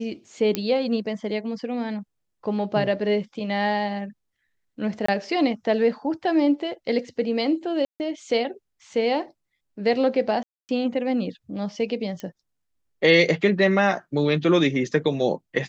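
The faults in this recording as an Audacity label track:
0.550000	0.550000	click −8 dBFS
5.060000	5.080000	drop-out 24 ms
7.850000	8.000000	drop-out 149 ms
10.430000	10.690000	drop-out 259 ms
12.200000	12.200000	click −20 dBFS

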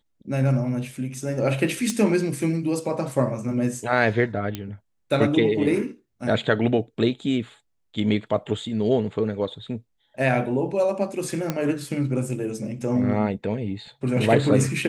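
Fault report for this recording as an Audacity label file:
1.900000	1.900000	click −12 dBFS
4.550000	4.550000	click −14 dBFS
11.500000	11.500000	click −10 dBFS

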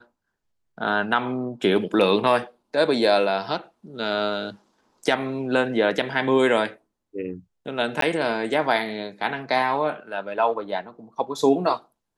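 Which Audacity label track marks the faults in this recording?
8.010000	8.020000	drop-out 13 ms

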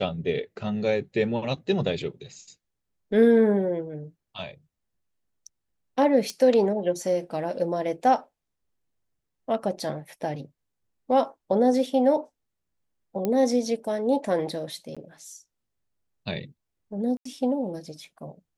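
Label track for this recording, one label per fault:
6.300000	6.300000	click −18 dBFS
13.250000	13.250000	click −14 dBFS
14.950000	14.970000	drop-out 16 ms
17.170000	17.250000	drop-out 84 ms

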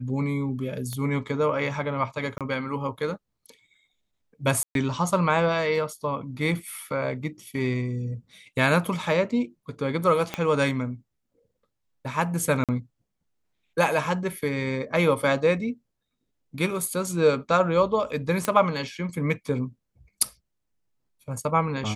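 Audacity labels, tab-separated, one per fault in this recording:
0.930000	0.930000	click −20 dBFS
2.380000	2.410000	drop-out 27 ms
4.630000	4.750000	drop-out 122 ms
10.340000	10.340000	click −13 dBFS
12.640000	12.690000	drop-out 47 ms
18.450000	18.450000	click −10 dBFS

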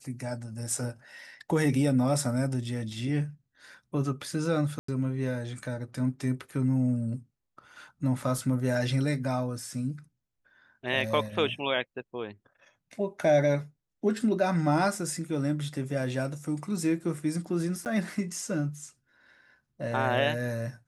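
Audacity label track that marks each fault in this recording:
4.790000	4.880000	drop-out 94 ms
8.380000	8.380000	drop-out 2.2 ms
17.850000	17.860000	drop-out 9.2 ms

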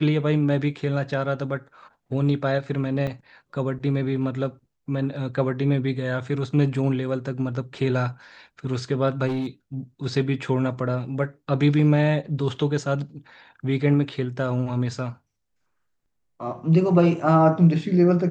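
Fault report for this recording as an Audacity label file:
3.070000	3.070000	drop-out 4.9 ms
9.270000	9.470000	clipping −22.5 dBFS

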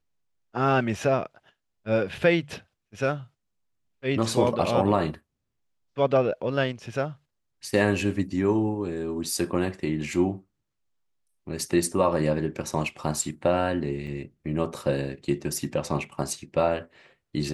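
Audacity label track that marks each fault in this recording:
14.070000	14.070000	drop-out 3.9 ms

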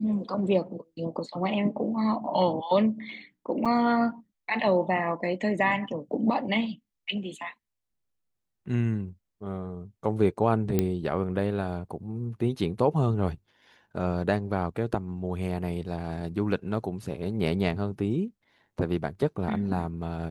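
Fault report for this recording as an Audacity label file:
3.650000	3.660000	drop-out 6 ms
10.790000	10.790000	click −11 dBFS

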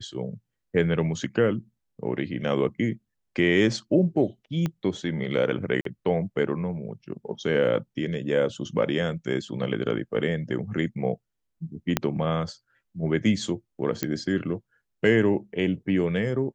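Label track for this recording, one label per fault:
4.660000	4.660000	click −15 dBFS
5.810000	5.850000	drop-out 43 ms
11.970000	11.970000	click −6 dBFS
14.030000	14.030000	click −10 dBFS

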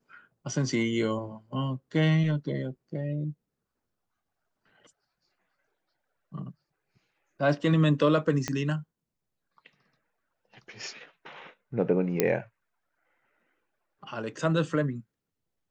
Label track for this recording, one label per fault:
8.480000	8.480000	click −15 dBFS
12.200000	12.200000	click −7 dBFS

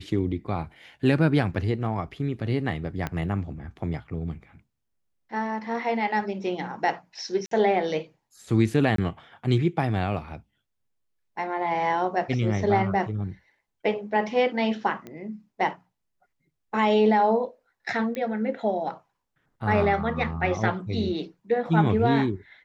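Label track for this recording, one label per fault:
3.070000	3.070000	click −15 dBFS
7.460000	7.510000	drop-out 53 ms
8.960000	8.980000	drop-out 23 ms
15.070000	15.070000	click −25 dBFS
18.150000	18.150000	click −19 dBFS

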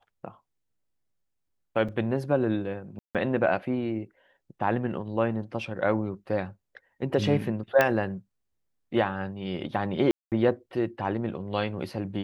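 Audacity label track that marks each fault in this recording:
1.880000	1.890000	drop-out 5.7 ms
2.990000	3.150000	drop-out 157 ms
7.810000	7.810000	click −8 dBFS
10.110000	10.320000	drop-out 208 ms

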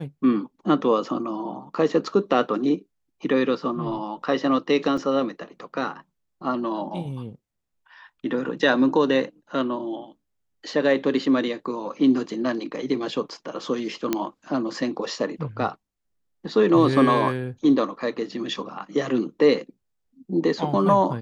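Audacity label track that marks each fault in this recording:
4.970000	4.980000	drop-out 5.2 ms
14.130000	14.130000	click −8 dBFS

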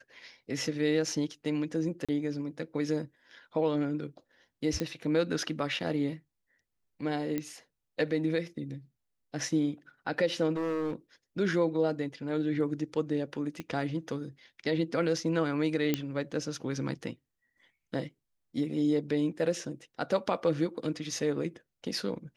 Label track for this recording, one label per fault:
2.050000	2.090000	drop-out 36 ms
4.800000	4.800000	click −18 dBFS
7.380000	7.380000	click −19 dBFS
10.520000	10.930000	clipping −28 dBFS
13.600000	13.600000	click −23 dBFS
15.940000	15.940000	click −13 dBFS

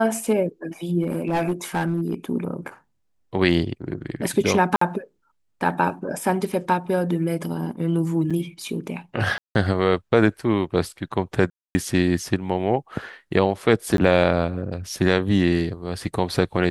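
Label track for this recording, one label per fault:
1.020000	2.140000	clipping −18 dBFS
4.760000	4.810000	drop-out 54 ms
8.300000	8.310000	drop-out 5.9 ms
9.380000	9.550000	drop-out 170 ms
11.500000	11.750000	drop-out 250 ms
13.970000	13.980000	drop-out 12 ms

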